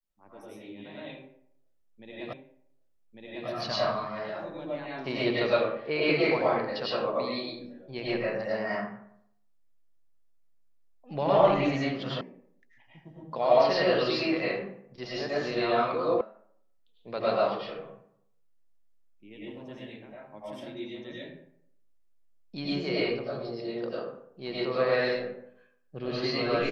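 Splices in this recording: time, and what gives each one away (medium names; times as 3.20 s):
2.33 s: repeat of the last 1.15 s
12.21 s: sound stops dead
16.21 s: sound stops dead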